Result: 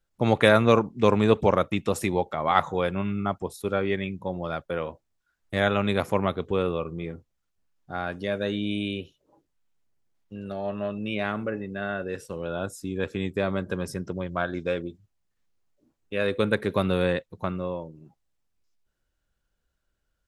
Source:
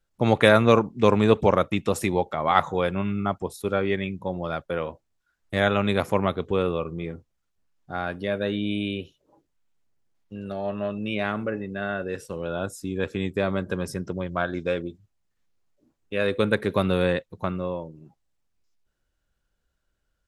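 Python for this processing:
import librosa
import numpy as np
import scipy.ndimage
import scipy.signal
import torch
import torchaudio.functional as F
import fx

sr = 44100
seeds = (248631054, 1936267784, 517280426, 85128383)

y = fx.peak_eq(x, sr, hz=6600.0, db=11.0, octaves=0.64, at=(8.12, 9.0))
y = y * librosa.db_to_amplitude(-1.5)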